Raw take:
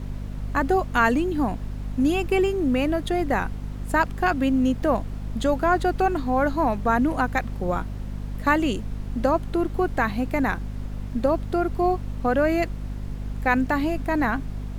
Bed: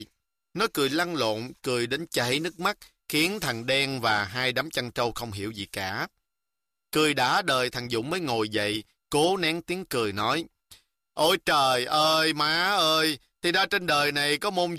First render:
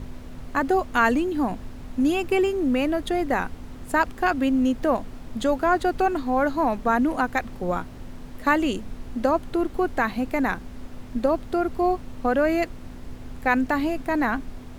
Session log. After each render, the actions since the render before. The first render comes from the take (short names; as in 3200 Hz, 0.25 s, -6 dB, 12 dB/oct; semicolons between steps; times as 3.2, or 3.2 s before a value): notches 50/100/150/200 Hz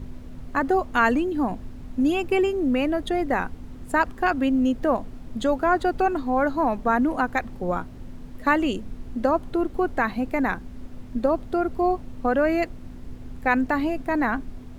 denoiser 6 dB, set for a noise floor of -40 dBFS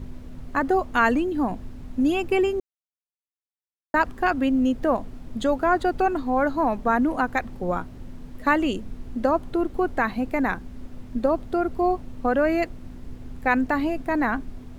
2.6–3.94 mute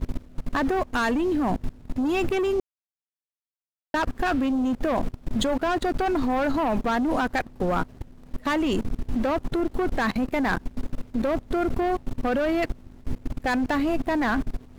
sample leveller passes 3; level quantiser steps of 23 dB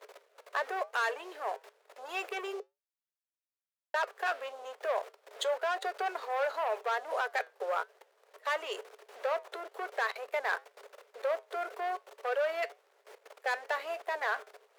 rippled Chebyshev high-pass 410 Hz, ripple 3 dB; flange 1 Hz, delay 4.9 ms, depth 2.4 ms, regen -83%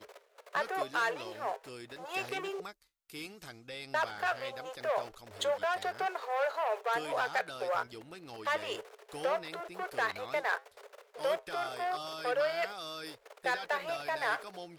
add bed -20 dB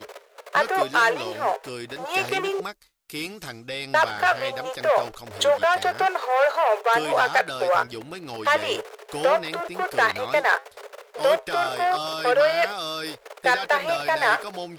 gain +12 dB